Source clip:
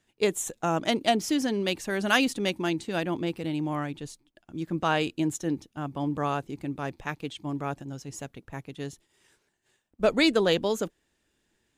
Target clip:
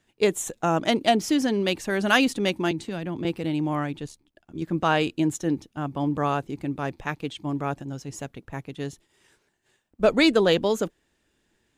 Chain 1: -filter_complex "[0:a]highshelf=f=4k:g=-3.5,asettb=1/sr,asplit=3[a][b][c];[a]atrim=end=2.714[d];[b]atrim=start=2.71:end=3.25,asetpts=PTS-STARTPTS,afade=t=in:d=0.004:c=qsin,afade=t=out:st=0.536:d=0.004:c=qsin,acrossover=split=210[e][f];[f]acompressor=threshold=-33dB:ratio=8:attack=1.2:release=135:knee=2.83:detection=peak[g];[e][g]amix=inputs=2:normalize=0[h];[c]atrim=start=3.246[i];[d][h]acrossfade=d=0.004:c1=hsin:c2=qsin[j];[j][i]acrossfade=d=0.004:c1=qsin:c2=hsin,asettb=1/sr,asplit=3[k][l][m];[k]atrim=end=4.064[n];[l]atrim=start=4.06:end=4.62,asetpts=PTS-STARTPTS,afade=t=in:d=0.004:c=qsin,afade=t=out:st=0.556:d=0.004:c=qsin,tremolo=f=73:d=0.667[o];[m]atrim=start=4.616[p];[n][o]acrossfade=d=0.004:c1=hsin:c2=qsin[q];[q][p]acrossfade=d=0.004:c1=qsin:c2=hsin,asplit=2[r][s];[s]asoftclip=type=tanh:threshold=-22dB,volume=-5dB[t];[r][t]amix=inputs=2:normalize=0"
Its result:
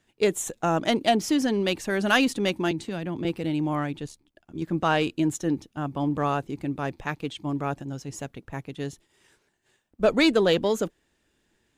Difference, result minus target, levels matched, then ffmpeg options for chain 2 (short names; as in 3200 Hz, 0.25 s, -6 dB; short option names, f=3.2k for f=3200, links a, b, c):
soft clip: distortion +13 dB
-filter_complex "[0:a]highshelf=f=4k:g=-3.5,asettb=1/sr,asplit=3[a][b][c];[a]atrim=end=2.714[d];[b]atrim=start=2.71:end=3.25,asetpts=PTS-STARTPTS,afade=t=in:d=0.004:c=qsin,afade=t=out:st=0.536:d=0.004:c=qsin,acrossover=split=210[e][f];[f]acompressor=threshold=-33dB:ratio=8:attack=1.2:release=135:knee=2.83:detection=peak[g];[e][g]amix=inputs=2:normalize=0[h];[c]atrim=start=3.246[i];[d][h]acrossfade=d=0.004:c1=hsin:c2=qsin[j];[j][i]acrossfade=d=0.004:c1=qsin:c2=hsin,asettb=1/sr,asplit=3[k][l][m];[k]atrim=end=4.064[n];[l]atrim=start=4.06:end=4.62,asetpts=PTS-STARTPTS,afade=t=in:d=0.004:c=qsin,afade=t=out:st=0.556:d=0.004:c=qsin,tremolo=f=73:d=0.667[o];[m]atrim=start=4.616[p];[n][o]acrossfade=d=0.004:c1=hsin:c2=qsin[q];[q][p]acrossfade=d=0.004:c1=qsin:c2=hsin,asplit=2[r][s];[s]asoftclip=type=tanh:threshold=-11dB,volume=-5dB[t];[r][t]amix=inputs=2:normalize=0"